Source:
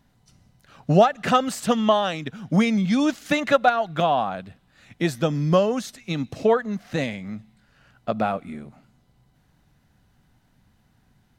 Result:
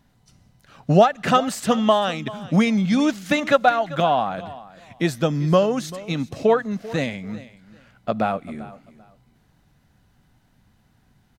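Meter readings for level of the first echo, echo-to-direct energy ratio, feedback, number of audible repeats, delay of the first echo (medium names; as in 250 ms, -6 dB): -18.0 dB, -18.0 dB, 22%, 2, 391 ms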